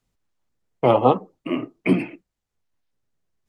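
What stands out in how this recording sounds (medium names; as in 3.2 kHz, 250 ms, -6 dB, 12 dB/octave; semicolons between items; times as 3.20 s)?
noise floor -83 dBFS; spectral tilt -4.5 dB/octave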